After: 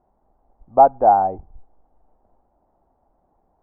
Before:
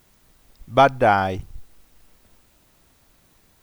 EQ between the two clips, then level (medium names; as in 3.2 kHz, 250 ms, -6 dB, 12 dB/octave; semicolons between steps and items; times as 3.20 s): four-pole ladder low-pass 880 Hz, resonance 65%; distance through air 240 m; peaking EQ 120 Hz -10 dB 0.86 oct; +6.5 dB